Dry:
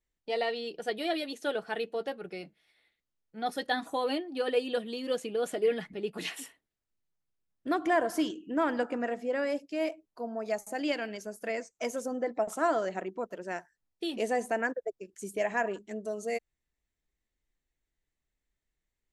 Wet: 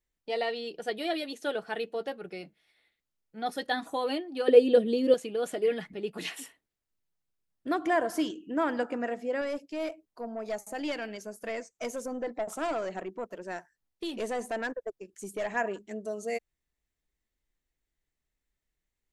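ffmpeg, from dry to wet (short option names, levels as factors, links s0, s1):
-filter_complex "[0:a]asettb=1/sr,asplit=3[s0][s1][s2];[s0]atrim=end=4.484[s3];[s1]atrim=start=4.48:end=5.14,asetpts=PTS-STARTPTS,afade=t=in:d=0.004:c=qsin,afade=t=out:st=0.656:d=0.004:c=qsin,lowshelf=f=670:t=q:w=1.5:g=9[s4];[s2]atrim=start=5.136[s5];[s3][s4]acrossfade=d=0.004:c1=hsin:c2=qsin[s6];[s6][s5]acrossfade=d=0.004:c1=qsin:c2=hsin,asettb=1/sr,asplit=3[s7][s8][s9];[s7]atrim=end=9.414[s10];[s8]atrim=start=9.41:end=15.56,asetpts=PTS-STARTPTS,afade=t=in:d=0.004:c=qsin,afade=t=out:st=6.146:d=0.004:c=qsin,aeval=exprs='(tanh(20*val(0)+0.15)-tanh(0.15))/20':c=same[s11];[s9]atrim=start=15.556[s12];[s10][s11]acrossfade=d=0.004:c1=hsin:c2=qsin[s13];[s13][s12]acrossfade=d=0.004:c1=qsin:c2=hsin"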